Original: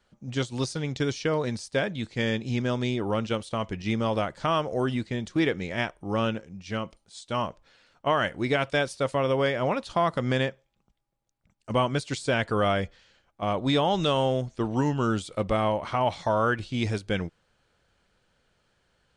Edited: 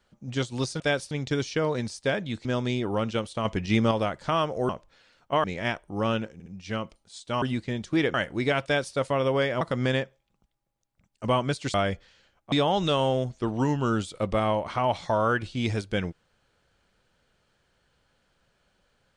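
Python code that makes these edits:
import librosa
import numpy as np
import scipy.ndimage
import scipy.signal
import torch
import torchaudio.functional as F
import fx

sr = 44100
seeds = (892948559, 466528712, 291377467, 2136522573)

y = fx.edit(x, sr, fx.cut(start_s=2.14, length_s=0.47),
    fx.clip_gain(start_s=3.61, length_s=0.46, db=4.5),
    fx.swap(start_s=4.85, length_s=0.72, other_s=7.43, other_length_s=0.75),
    fx.stutter(start_s=6.47, slice_s=0.06, count=3),
    fx.duplicate(start_s=8.68, length_s=0.31, to_s=0.8),
    fx.cut(start_s=9.65, length_s=0.42),
    fx.cut(start_s=12.2, length_s=0.45),
    fx.cut(start_s=13.43, length_s=0.26), tone=tone)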